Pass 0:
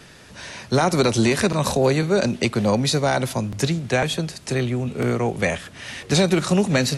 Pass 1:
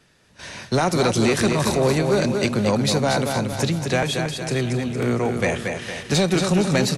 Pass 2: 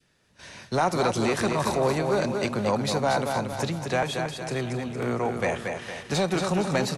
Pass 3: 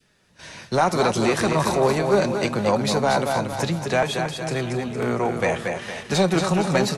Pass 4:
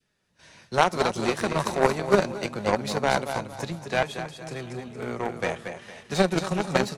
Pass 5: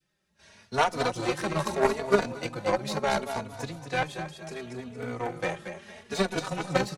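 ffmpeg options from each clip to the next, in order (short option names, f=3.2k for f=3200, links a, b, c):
-af "aecho=1:1:230|460|690|920|1150|1380:0.501|0.231|0.106|0.0488|0.0224|0.0103,agate=range=-13dB:threshold=-37dB:ratio=16:detection=peak,asoftclip=type=tanh:threshold=-10dB"
-af "adynamicequalizer=threshold=0.0158:dfrequency=910:dqfactor=0.83:tfrequency=910:tqfactor=0.83:attack=5:release=100:ratio=0.375:range=4:mode=boostabove:tftype=bell,volume=-8dB"
-af "flanger=delay=4.6:depth=1.7:regen=68:speed=1:shape=sinusoidal,volume=8.5dB"
-af "aeval=exprs='0.422*(cos(1*acos(clip(val(0)/0.422,-1,1)))-cos(1*PI/2))+0.133*(cos(3*acos(clip(val(0)/0.422,-1,1)))-cos(3*PI/2))+0.00841*(cos(5*acos(clip(val(0)/0.422,-1,1)))-cos(5*PI/2))':c=same,volume=4.5dB"
-filter_complex "[0:a]asplit=2[a][b];[b]adelay=3.4,afreqshift=0.73[c];[a][c]amix=inputs=2:normalize=1"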